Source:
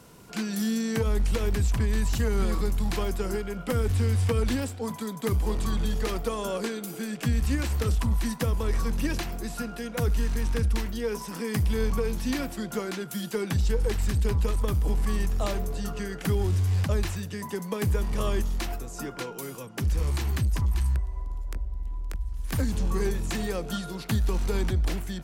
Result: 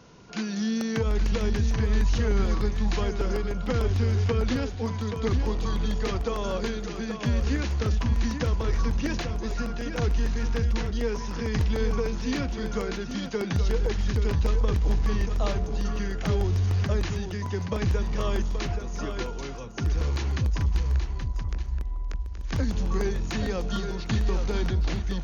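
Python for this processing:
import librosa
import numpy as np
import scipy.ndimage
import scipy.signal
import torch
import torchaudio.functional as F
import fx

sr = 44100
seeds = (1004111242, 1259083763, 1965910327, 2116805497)

y = fx.brickwall_lowpass(x, sr, high_hz=6900.0)
y = y + 10.0 ** (-7.5 / 20.0) * np.pad(y, (int(826 * sr / 1000.0), 0))[:len(y)]
y = fx.buffer_crackle(y, sr, first_s=0.81, period_s=0.15, block=64, kind='repeat')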